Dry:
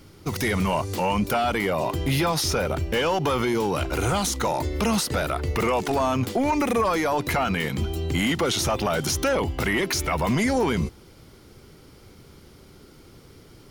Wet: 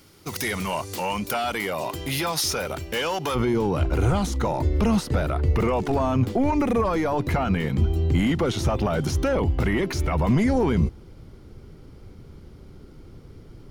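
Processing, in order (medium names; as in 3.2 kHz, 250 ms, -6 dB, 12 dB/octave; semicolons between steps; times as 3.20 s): tilt EQ +1.5 dB/octave, from 3.34 s -2.5 dB/octave; trim -2.5 dB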